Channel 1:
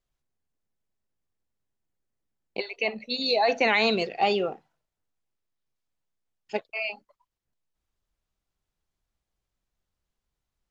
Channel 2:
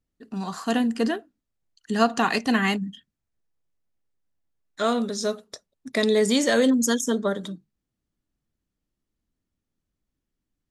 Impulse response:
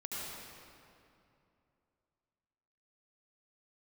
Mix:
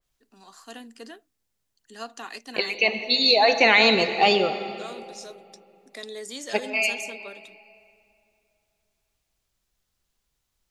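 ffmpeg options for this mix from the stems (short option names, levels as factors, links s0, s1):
-filter_complex "[0:a]adynamicequalizer=threshold=0.0224:dfrequency=2700:dqfactor=0.7:tfrequency=2700:tqfactor=0.7:attack=5:release=100:ratio=0.375:range=2:mode=cutabove:tftype=highshelf,volume=1.19,asplit=2[s0][s1];[s1]volume=0.355[s2];[1:a]highpass=f=260:w=0.5412,highpass=f=260:w=1.3066,volume=0.133[s3];[2:a]atrim=start_sample=2205[s4];[s2][s4]afir=irnorm=-1:irlink=0[s5];[s0][s3][s5]amix=inputs=3:normalize=0,highshelf=f=2300:g=9"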